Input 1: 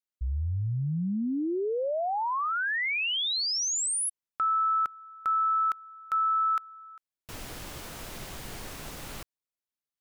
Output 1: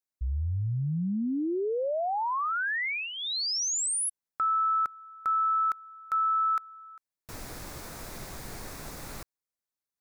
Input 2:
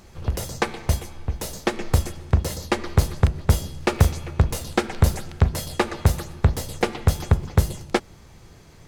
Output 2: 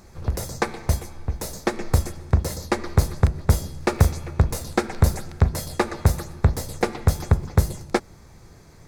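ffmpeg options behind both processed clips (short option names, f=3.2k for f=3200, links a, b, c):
-af "equalizer=f=3k:t=o:w=0.42:g=-10"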